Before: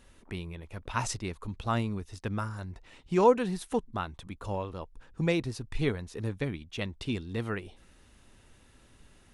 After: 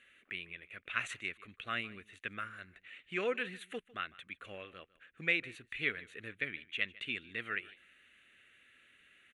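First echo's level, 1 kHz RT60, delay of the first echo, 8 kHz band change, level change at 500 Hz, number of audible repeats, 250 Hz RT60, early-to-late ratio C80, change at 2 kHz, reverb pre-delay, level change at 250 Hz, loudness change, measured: −21.0 dB, no reverb audible, 152 ms, below −10 dB, −12.5 dB, 1, no reverb audible, no reverb audible, +4.5 dB, no reverb audible, −15.5 dB, −6.5 dB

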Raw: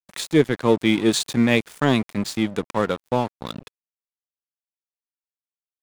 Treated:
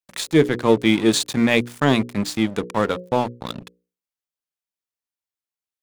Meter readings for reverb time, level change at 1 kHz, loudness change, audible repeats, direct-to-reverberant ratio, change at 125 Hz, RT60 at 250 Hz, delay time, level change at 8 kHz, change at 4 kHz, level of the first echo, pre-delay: no reverb audible, +2.0 dB, +1.5 dB, no echo audible, no reverb audible, +0.5 dB, no reverb audible, no echo audible, +2.0 dB, +2.0 dB, no echo audible, no reverb audible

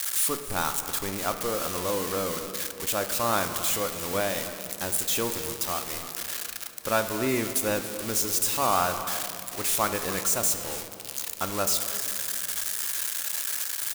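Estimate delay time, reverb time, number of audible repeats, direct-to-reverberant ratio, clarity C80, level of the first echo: 281 ms, 2.8 s, 1, 7.0 dB, 9.5 dB, −16.0 dB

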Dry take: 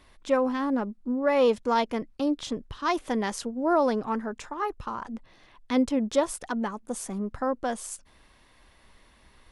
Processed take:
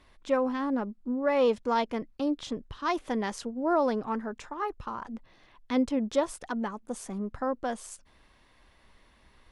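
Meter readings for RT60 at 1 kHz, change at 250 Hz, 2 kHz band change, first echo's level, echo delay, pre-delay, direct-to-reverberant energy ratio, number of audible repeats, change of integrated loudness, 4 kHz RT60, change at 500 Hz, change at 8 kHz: no reverb audible, −2.5 dB, −3.0 dB, no echo audible, no echo audible, no reverb audible, no reverb audible, no echo audible, −2.5 dB, no reverb audible, −2.5 dB, −6.5 dB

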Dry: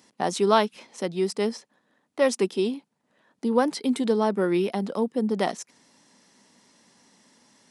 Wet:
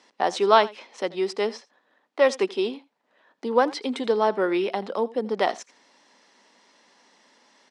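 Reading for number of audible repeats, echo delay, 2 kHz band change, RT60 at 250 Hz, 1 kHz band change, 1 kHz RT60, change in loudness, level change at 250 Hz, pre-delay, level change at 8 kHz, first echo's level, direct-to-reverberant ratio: 1, 83 ms, +4.0 dB, no reverb audible, +4.0 dB, no reverb audible, +1.0 dB, −4.5 dB, no reverb audible, −5.0 dB, −20.5 dB, no reverb audible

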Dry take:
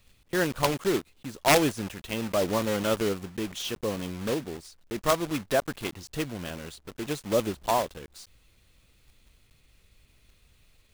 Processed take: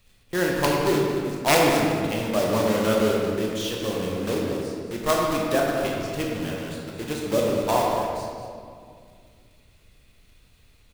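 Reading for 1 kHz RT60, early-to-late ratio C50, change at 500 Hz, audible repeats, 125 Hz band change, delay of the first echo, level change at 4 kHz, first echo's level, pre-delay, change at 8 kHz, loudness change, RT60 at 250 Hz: 2.1 s, −0.5 dB, +5.5 dB, 1, +5.0 dB, 225 ms, +3.5 dB, −10.5 dB, 20 ms, +2.5 dB, +4.5 dB, 2.8 s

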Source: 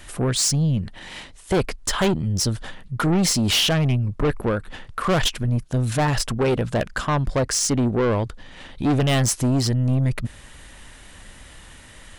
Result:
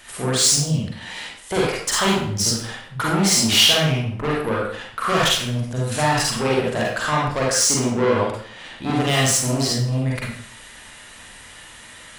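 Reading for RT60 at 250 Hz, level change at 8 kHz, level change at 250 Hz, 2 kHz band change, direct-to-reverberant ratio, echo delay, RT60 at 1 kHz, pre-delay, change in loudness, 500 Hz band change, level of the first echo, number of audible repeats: 0.55 s, +5.5 dB, −1.0 dB, +5.0 dB, −4.5 dB, no echo audible, 0.60 s, 38 ms, +2.5 dB, +2.0 dB, no echo audible, no echo audible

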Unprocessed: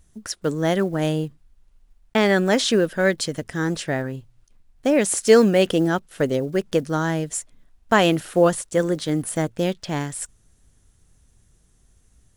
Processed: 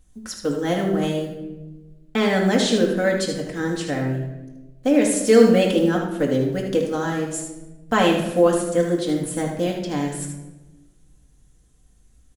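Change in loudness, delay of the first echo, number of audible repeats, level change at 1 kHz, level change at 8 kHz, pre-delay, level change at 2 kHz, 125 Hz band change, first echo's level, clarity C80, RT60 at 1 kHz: +0.5 dB, 77 ms, 1, −0.5 dB, −1.5 dB, 4 ms, −2.0 dB, −0.5 dB, −6.0 dB, 6.5 dB, 0.90 s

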